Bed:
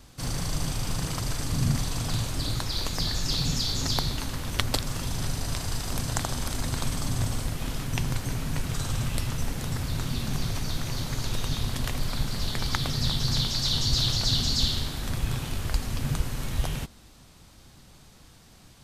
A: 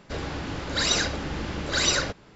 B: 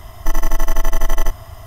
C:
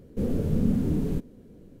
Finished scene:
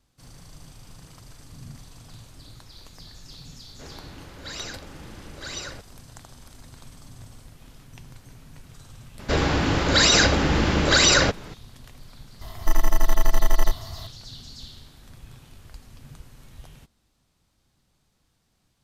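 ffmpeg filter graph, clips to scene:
ffmpeg -i bed.wav -i cue0.wav -i cue1.wav -filter_complex "[1:a]asplit=2[link_01][link_02];[0:a]volume=-17dB[link_03];[link_02]alimiter=level_in=16.5dB:limit=-1dB:release=50:level=0:latency=1[link_04];[2:a]acrusher=bits=10:mix=0:aa=0.000001[link_05];[link_01]atrim=end=2.35,asetpts=PTS-STARTPTS,volume=-12dB,afade=type=in:duration=0.004:curve=hsin,afade=type=out:start_time=2.346:duration=0.004:curve=hsin,adelay=162729S[link_06];[link_04]atrim=end=2.35,asetpts=PTS-STARTPTS,volume=-6dB,afade=type=in:duration=0.004:curve=hsin,afade=type=out:start_time=2.346:duration=0.004:curve=hsin,adelay=9190[link_07];[link_05]atrim=end=1.66,asetpts=PTS-STARTPTS,volume=-3dB,afade=type=in:duration=0.004:curve=hsin,afade=type=out:start_time=1.656:duration=0.004:curve=hsin,adelay=12410[link_08];[link_03][link_06][link_07][link_08]amix=inputs=4:normalize=0" out.wav

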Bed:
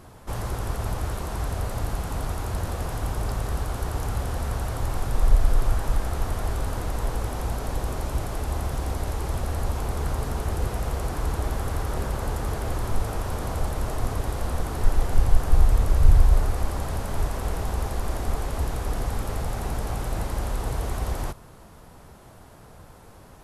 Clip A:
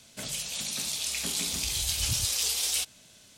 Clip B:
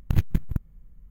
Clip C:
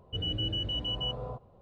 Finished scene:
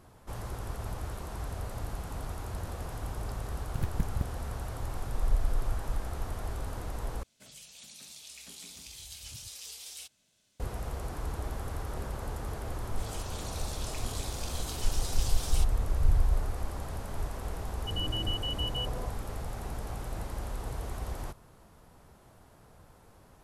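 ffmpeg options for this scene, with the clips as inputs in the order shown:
ffmpeg -i bed.wav -i cue0.wav -i cue1.wav -i cue2.wav -filter_complex "[1:a]asplit=2[link_01][link_02];[0:a]volume=-9dB[link_03];[2:a]dynaudnorm=framelen=160:gausssize=3:maxgain=11.5dB[link_04];[link_03]asplit=2[link_05][link_06];[link_05]atrim=end=7.234[link_07];[link_01]atrim=end=3.37,asetpts=PTS-STARTPTS,volume=-16.5dB[link_08];[link_06]atrim=start=10.596[link_09];[link_04]atrim=end=1.1,asetpts=PTS-STARTPTS,volume=-12dB,afade=type=in:duration=0.004:curve=hsin,afade=type=out:start_time=1.096:duration=0.004:curve=hsin,adelay=160965S[link_10];[link_02]atrim=end=3.37,asetpts=PTS-STARTPTS,volume=-12dB,afade=type=in:duration=0.004:curve=hsin,afade=type=out:start_time=3.366:duration=0.004:curve=hsin,adelay=12800[link_11];[3:a]atrim=end=1.61,asetpts=PTS-STARTPTS,volume=-2dB,afade=type=in:duration=0.004:curve=hsin,afade=type=out:start_time=1.606:duration=0.004:curve=hsin,adelay=17740[link_12];[link_07][link_08]acrossfade=duration=0.004:curve1=hsin:curve2=hsin[link_13];[link_13][link_09]acrossfade=duration=0.004:curve1=hsin:curve2=hsin[link_14];[link_14][link_10][link_11][link_12]amix=inputs=4:normalize=0" out.wav

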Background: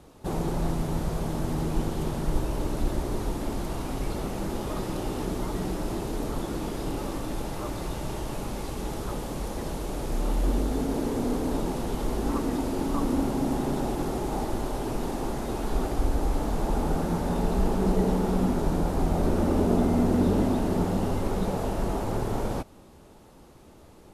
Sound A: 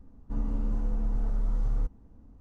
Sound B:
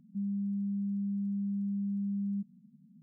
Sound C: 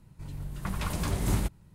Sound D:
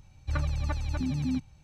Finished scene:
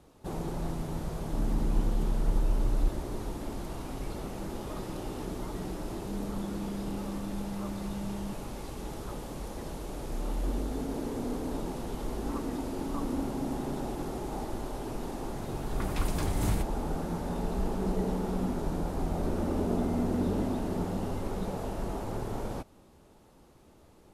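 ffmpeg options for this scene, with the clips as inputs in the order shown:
ffmpeg -i bed.wav -i cue0.wav -i cue1.wav -i cue2.wav -filter_complex "[0:a]volume=-6.5dB[link_01];[1:a]atrim=end=2.4,asetpts=PTS-STARTPTS,volume=-0.5dB,afade=type=in:duration=0.004:curve=hsin,afade=type=out:start_time=2.396:duration=0.004:curve=hsin,adelay=1020[link_02];[2:a]atrim=end=3.02,asetpts=PTS-STARTPTS,volume=-5dB,afade=type=in:duration=0.004:curve=hsin,afade=type=out:start_time=3.016:duration=0.004:curve=hsin,adelay=5910[link_03];[3:a]atrim=end=1.74,asetpts=PTS-STARTPTS,volume=-2.5dB,afade=type=in:duration=0.004:curve=hsin,afade=type=out:start_time=1.736:duration=0.004:curve=hsin,adelay=15150[link_04];[link_01][link_02][link_03][link_04]amix=inputs=4:normalize=0" out.wav

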